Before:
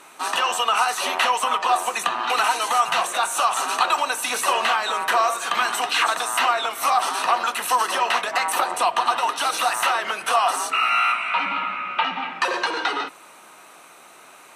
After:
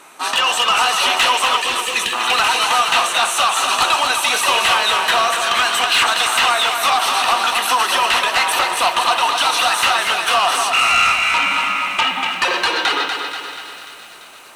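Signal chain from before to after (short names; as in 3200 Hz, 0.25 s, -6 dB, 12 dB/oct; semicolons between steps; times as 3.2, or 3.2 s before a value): dynamic EQ 3300 Hz, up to +8 dB, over -38 dBFS, Q 0.91; added harmonics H 3 -10 dB, 5 -8 dB, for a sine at -0.5 dBFS; 1.59–2.13 brick-wall FIR band-stop 550–1600 Hz; on a send: thinning echo 0.34 s, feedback 71%, high-pass 1100 Hz, level -14 dB; on the sum: lo-fi delay 0.241 s, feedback 55%, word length 7-bit, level -6 dB; gain -3 dB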